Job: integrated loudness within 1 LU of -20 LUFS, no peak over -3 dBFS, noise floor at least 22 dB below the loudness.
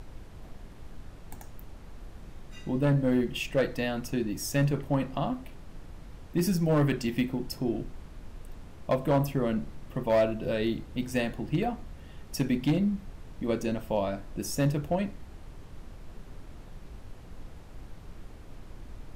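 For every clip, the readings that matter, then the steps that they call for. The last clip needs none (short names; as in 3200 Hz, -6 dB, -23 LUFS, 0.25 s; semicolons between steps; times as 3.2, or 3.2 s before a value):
clipped 0.5%; flat tops at -18.5 dBFS; noise floor -47 dBFS; noise floor target -52 dBFS; loudness -29.5 LUFS; peak -18.5 dBFS; loudness target -20.0 LUFS
-> clip repair -18.5 dBFS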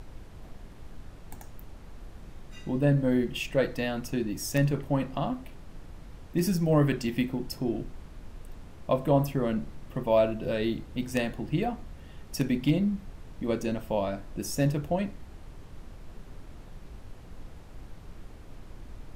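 clipped 0.0%; noise floor -47 dBFS; noise floor target -51 dBFS
-> noise print and reduce 6 dB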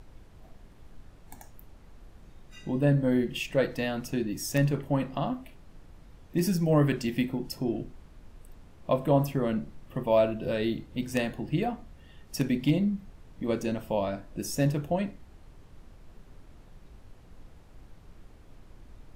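noise floor -53 dBFS; loudness -29.0 LUFS; peak -10.5 dBFS; loudness target -20.0 LUFS
-> gain +9 dB; limiter -3 dBFS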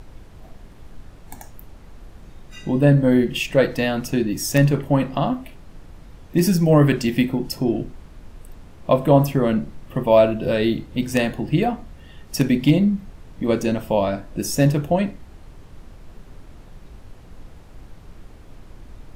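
loudness -20.0 LUFS; peak -3.0 dBFS; noise floor -44 dBFS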